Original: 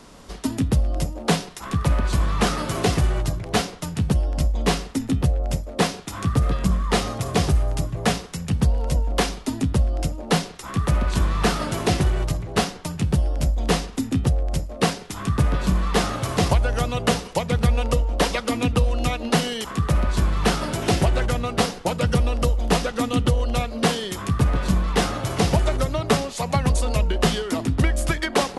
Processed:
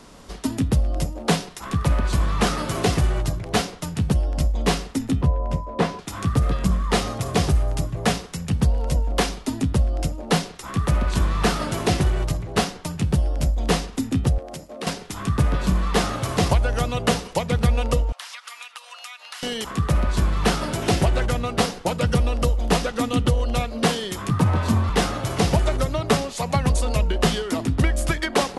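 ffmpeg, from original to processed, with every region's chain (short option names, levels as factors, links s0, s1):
-filter_complex "[0:a]asettb=1/sr,asplit=3[s0][s1][s2];[s0]atrim=end=5.224[s3];[s1]atrim=start=5.22:end=5.99,asetpts=PTS-STARTPTS,afade=t=in:d=0.004:c=qsin,afade=t=out:st=0.766:d=0.004:c=qsin,lowpass=f=1600:p=1,asplit=2[s4][s5];[s5]adelay=13,volume=0.266[s6];[s4][s6]amix=inputs=2:normalize=0,atrim=end_sample=33957,aeval=exprs='val(0)+0.0178*sin(2*PI*1000*n/s)':c=same[s7];[s2]atrim=start=5.986[s8];[s3][s7]acrossfade=d=0.004:c1=hsin:c2=qsin[s9];[s9][s8]acrossfade=d=0.004:c1=qsin:c2=hsin,asettb=1/sr,asplit=3[s10][s11][s12];[s10]atrim=end=14.384[s13];[s11]atrim=start=14.38:end=14.87,asetpts=PTS-STARTPTS,afade=t=in:d=0.004:c=qsin,afade=t=out:st=0.486:d=0.004:c=qsin,highpass=200,acompressor=threshold=0.0282:ratio=3:attack=3.2:release=140:knee=1:detection=peak[s14];[s12]atrim=start=14.866[s15];[s13][s14]acrossfade=d=0.004:c1=hsin:c2=qsin[s16];[s16][s15]acrossfade=d=0.004:c1=qsin:c2=hsin,asettb=1/sr,asplit=3[s17][s18][s19];[s17]atrim=end=18.124[s20];[s18]atrim=start=18.12:end=19.43,asetpts=PTS-STARTPTS,afade=t=in:d=0.004:c=qsin,afade=t=out:st=1.306:d=0.004:c=qsin,highpass=f=1100:w=0.5412,highpass=f=1100:w=1.3066,acompressor=threshold=0.0224:ratio=10:attack=3.2:release=140:knee=1:detection=peak[s21];[s19]atrim=start=19.426[s22];[s20][s21]acrossfade=d=0.004:c1=hsin:c2=qsin[s23];[s23][s22]acrossfade=d=0.004:c1=qsin:c2=hsin,asettb=1/sr,asplit=3[s24][s25][s26];[s24]atrim=end=24.304[s27];[s25]atrim=start=24.3:end=24.9,asetpts=PTS-STARTPTS,afade=t=in:d=0.004:c=qsin,afade=t=out:st=0.596:d=0.004:c=qsin,equalizer=f=890:w=3:g=8,afreqshift=37[s28];[s26]atrim=start=24.896[s29];[s27][s28]acrossfade=d=0.004:c1=hsin:c2=qsin[s30];[s30][s29]acrossfade=d=0.004:c1=qsin:c2=hsin"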